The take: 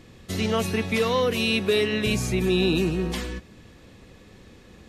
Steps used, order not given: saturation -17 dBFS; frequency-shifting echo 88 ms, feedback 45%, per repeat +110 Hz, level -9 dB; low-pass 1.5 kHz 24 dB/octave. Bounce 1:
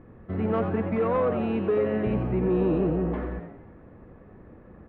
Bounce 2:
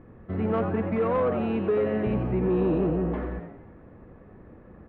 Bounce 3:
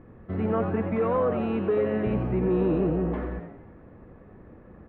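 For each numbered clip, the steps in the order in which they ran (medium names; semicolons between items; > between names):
low-pass > saturation > frequency-shifting echo; low-pass > frequency-shifting echo > saturation; saturation > low-pass > frequency-shifting echo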